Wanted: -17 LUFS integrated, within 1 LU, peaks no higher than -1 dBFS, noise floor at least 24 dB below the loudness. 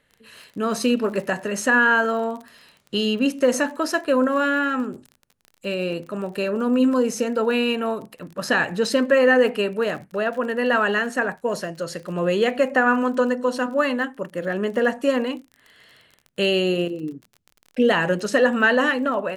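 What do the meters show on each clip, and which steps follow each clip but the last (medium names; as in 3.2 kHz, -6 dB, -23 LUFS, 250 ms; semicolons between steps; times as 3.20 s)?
tick rate 37 per s; loudness -21.5 LUFS; peak level -6.0 dBFS; loudness target -17.0 LUFS
-> de-click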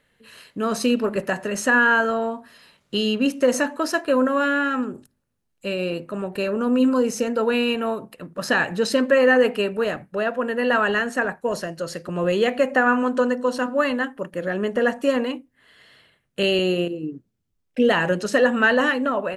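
tick rate 0 per s; loudness -21.5 LUFS; peak level -6.0 dBFS; loudness target -17.0 LUFS
-> trim +4.5 dB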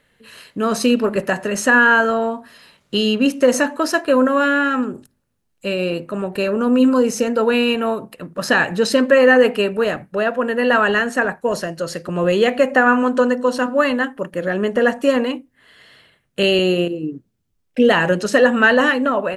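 loudness -17.0 LUFS; peak level -1.5 dBFS; noise floor -68 dBFS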